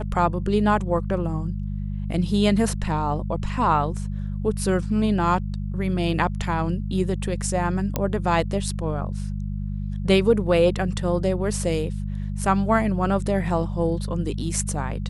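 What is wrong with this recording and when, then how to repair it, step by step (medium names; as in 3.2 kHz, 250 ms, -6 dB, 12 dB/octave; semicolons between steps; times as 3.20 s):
hum 50 Hz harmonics 4 -28 dBFS
7.96 s: pop -8 dBFS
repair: de-click; de-hum 50 Hz, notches 4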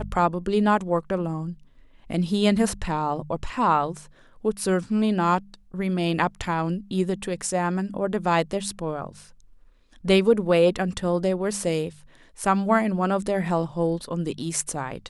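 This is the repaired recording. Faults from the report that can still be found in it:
nothing left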